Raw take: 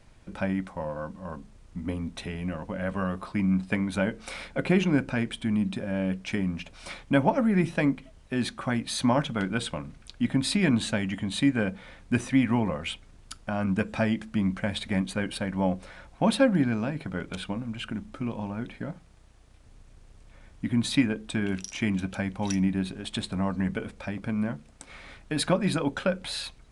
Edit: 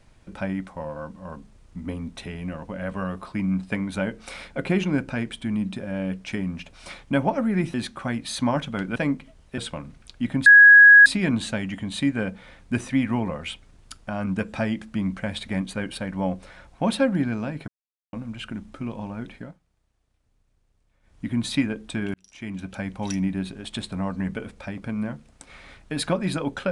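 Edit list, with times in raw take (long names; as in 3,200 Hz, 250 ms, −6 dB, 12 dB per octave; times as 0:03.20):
0:07.74–0:08.36: move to 0:09.58
0:10.46: insert tone 1,660 Hz −6.5 dBFS 0.60 s
0:17.08–0:17.53: silence
0:18.75–0:20.65: duck −15.5 dB, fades 0.23 s
0:21.54–0:22.30: fade in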